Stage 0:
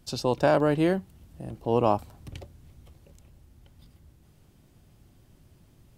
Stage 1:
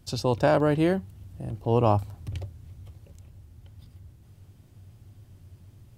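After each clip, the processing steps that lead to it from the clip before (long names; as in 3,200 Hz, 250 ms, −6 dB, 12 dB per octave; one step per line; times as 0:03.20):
parametric band 97 Hz +15 dB 0.5 octaves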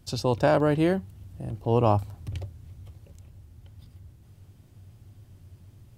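no processing that can be heard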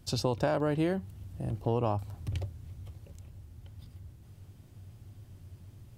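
downward compressor 6 to 1, threshold −25 dBFS, peak gain reduction 9.5 dB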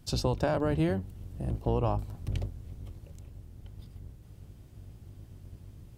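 sub-octave generator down 1 octave, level −2 dB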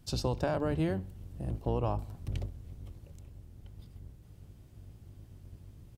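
repeating echo 64 ms, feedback 50%, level −23 dB
level −3 dB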